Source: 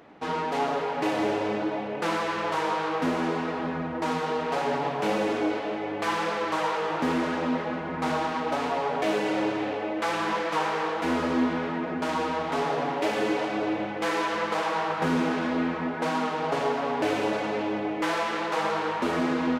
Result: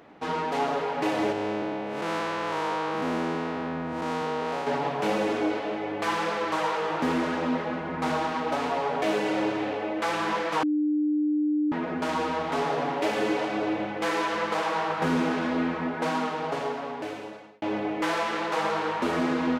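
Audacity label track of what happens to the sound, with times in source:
1.320000	4.670000	time blur width 0.187 s
10.630000	11.720000	bleep 300 Hz -21.5 dBFS
16.100000	17.620000	fade out

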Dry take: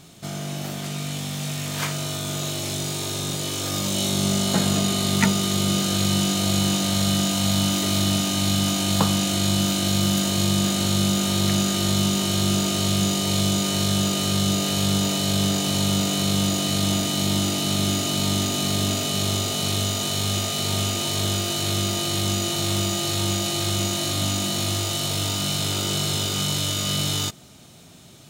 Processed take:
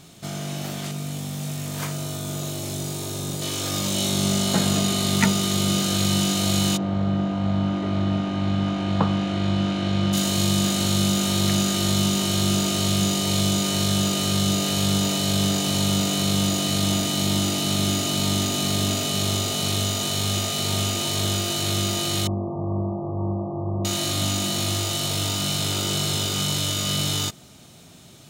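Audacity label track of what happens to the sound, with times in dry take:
0.910000	3.420000	bell 2800 Hz -7 dB 2.9 oct
6.760000	10.120000	LPF 1100 Hz -> 2600 Hz
22.270000	23.850000	brick-wall FIR low-pass 1200 Hz

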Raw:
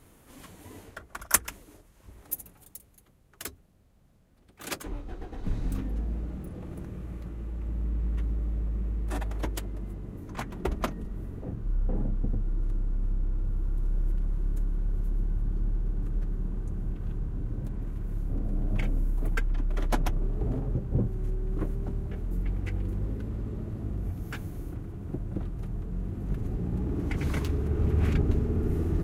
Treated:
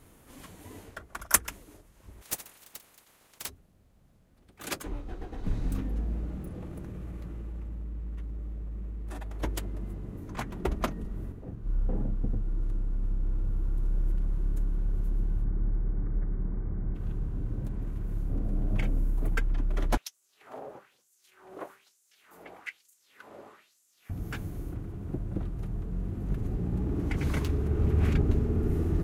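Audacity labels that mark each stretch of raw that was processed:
2.210000	3.480000	spectral limiter ceiling under each frame's peak by 29 dB
6.650000	9.420000	compressor, threshold -34 dBFS
11.320000	13.250000	upward expander, over -35 dBFS
15.440000	16.950000	brick-wall FIR low-pass 2300 Hz
19.970000	24.100000	LFO high-pass sine 1.1 Hz 590–7300 Hz

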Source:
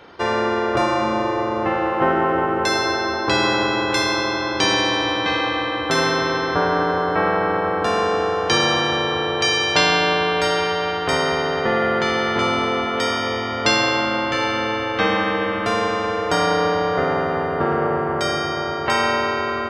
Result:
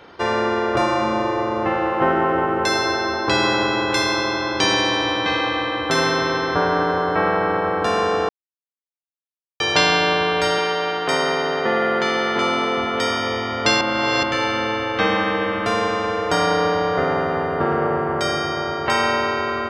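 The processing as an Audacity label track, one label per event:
8.290000	9.600000	mute
10.580000	12.780000	HPF 180 Hz
13.810000	14.230000	reverse

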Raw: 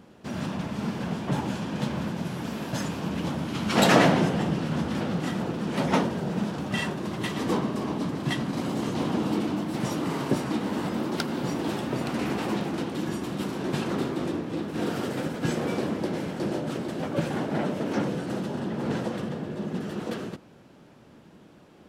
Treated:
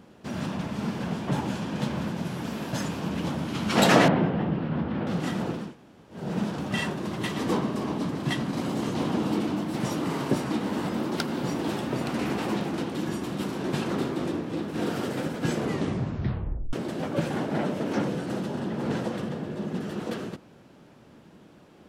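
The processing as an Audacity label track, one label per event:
4.080000	5.070000	air absorption 410 m
5.640000	6.210000	room tone, crossfade 0.24 s
15.540000	15.540000	tape stop 1.19 s

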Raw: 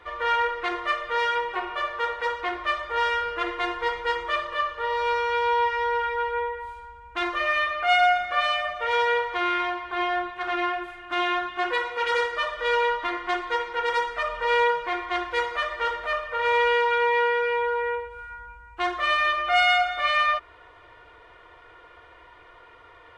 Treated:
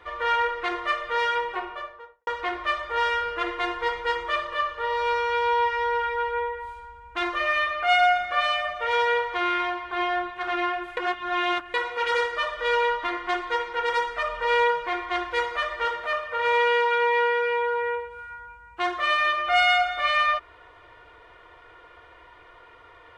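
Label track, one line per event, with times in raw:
1.410000	2.270000	studio fade out
10.970000	11.740000	reverse
15.850000	19.480000	HPF 74 Hz

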